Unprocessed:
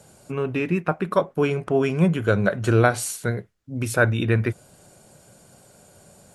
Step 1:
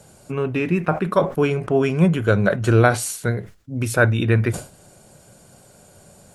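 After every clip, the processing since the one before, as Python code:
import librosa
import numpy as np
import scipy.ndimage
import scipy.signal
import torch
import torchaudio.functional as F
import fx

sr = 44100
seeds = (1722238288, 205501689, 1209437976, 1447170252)

y = fx.low_shelf(x, sr, hz=70.0, db=5.5)
y = fx.sustainer(y, sr, db_per_s=150.0)
y = y * 10.0 ** (2.0 / 20.0)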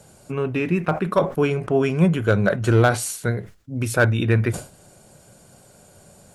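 y = np.clip(x, -10.0 ** (-6.5 / 20.0), 10.0 ** (-6.5 / 20.0))
y = y * 10.0 ** (-1.0 / 20.0)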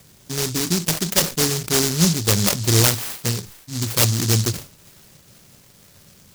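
y = fx.echo_wet_highpass(x, sr, ms=485, feedback_pct=68, hz=5300.0, wet_db=-16.0)
y = fx.noise_mod_delay(y, sr, seeds[0], noise_hz=5500.0, depth_ms=0.41)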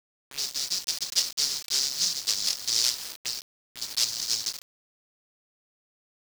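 y = fx.auto_wah(x, sr, base_hz=540.0, top_hz=4900.0, q=2.6, full_db=-21.5, direction='up')
y = fx.quant_dither(y, sr, seeds[1], bits=6, dither='none')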